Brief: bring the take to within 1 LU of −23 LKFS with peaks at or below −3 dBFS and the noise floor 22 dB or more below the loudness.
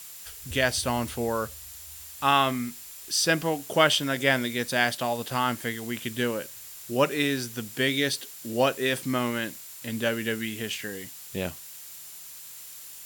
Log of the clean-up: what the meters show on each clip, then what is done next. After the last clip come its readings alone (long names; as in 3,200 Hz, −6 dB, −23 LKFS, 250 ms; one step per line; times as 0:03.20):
interfering tone 7,200 Hz; level of the tone −52 dBFS; background noise floor −44 dBFS; target noise floor −49 dBFS; integrated loudness −27.0 LKFS; sample peak −4.5 dBFS; target loudness −23.0 LKFS
→ notch filter 7,200 Hz, Q 30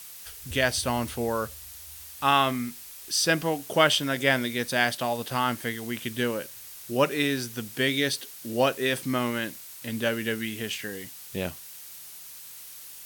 interfering tone none found; background noise floor −44 dBFS; target noise floor −49 dBFS
→ noise reduction from a noise print 6 dB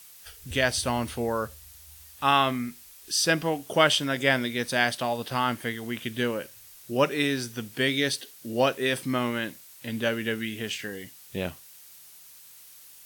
background noise floor −50 dBFS; integrated loudness −27.0 LKFS; sample peak −4.5 dBFS; target loudness −23.0 LKFS
→ level +4 dB
brickwall limiter −3 dBFS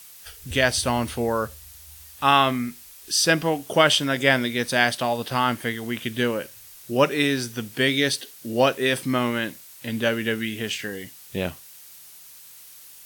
integrated loudness −23.0 LKFS; sample peak −3.0 dBFS; background noise floor −46 dBFS